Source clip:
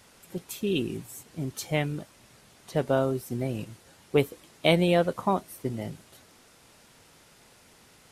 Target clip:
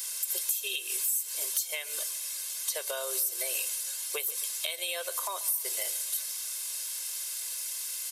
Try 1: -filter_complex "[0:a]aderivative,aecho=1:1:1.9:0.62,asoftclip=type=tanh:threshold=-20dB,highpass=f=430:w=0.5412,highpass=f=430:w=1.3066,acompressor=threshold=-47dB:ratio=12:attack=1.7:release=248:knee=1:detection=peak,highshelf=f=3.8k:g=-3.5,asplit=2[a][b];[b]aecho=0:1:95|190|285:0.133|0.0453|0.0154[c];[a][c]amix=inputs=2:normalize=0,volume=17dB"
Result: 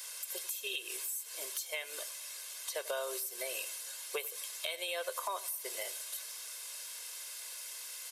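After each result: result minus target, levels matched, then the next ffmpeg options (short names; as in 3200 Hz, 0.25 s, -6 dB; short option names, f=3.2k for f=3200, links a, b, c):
soft clip: distortion +19 dB; echo 42 ms early; 4000 Hz band +3.0 dB
-filter_complex "[0:a]aderivative,aecho=1:1:1.9:0.62,asoftclip=type=tanh:threshold=-9.5dB,highpass=f=430:w=0.5412,highpass=f=430:w=1.3066,acompressor=threshold=-47dB:ratio=12:attack=1.7:release=248:knee=1:detection=peak,highshelf=f=3.8k:g=-3.5,asplit=2[a][b];[b]aecho=0:1:95|190|285:0.133|0.0453|0.0154[c];[a][c]amix=inputs=2:normalize=0,volume=17dB"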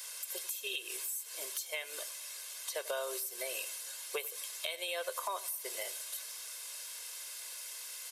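echo 42 ms early; 4000 Hz band +2.5 dB
-filter_complex "[0:a]aderivative,aecho=1:1:1.9:0.62,asoftclip=type=tanh:threshold=-9.5dB,highpass=f=430:w=0.5412,highpass=f=430:w=1.3066,acompressor=threshold=-47dB:ratio=12:attack=1.7:release=248:knee=1:detection=peak,highshelf=f=3.8k:g=-3.5,asplit=2[a][b];[b]aecho=0:1:137|274|411:0.133|0.0453|0.0154[c];[a][c]amix=inputs=2:normalize=0,volume=17dB"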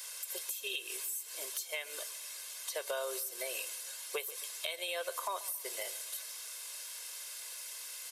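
4000 Hz band +2.5 dB
-filter_complex "[0:a]aderivative,aecho=1:1:1.9:0.62,asoftclip=type=tanh:threshold=-9.5dB,highpass=f=430:w=0.5412,highpass=f=430:w=1.3066,acompressor=threshold=-47dB:ratio=12:attack=1.7:release=248:knee=1:detection=peak,highshelf=f=3.8k:g=7.5,asplit=2[a][b];[b]aecho=0:1:137|274|411:0.133|0.0453|0.0154[c];[a][c]amix=inputs=2:normalize=0,volume=17dB"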